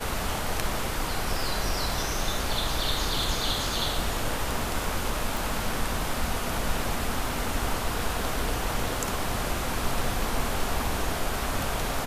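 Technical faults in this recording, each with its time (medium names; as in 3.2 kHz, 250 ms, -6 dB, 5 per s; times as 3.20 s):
5.37 s: pop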